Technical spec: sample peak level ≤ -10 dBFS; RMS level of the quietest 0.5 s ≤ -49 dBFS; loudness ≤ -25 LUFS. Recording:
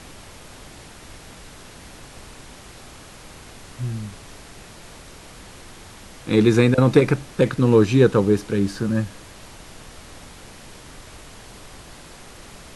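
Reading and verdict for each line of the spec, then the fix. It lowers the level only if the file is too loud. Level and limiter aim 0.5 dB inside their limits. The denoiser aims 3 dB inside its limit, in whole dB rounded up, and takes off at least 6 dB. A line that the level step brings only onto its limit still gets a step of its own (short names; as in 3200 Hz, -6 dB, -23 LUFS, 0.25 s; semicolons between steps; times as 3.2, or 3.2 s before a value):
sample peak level -2.5 dBFS: fail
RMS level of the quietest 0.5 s -42 dBFS: fail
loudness -19.0 LUFS: fail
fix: denoiser 6 dB, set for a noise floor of -42 dBFS; gain -6.5 dB; limiter -10.5 dBFS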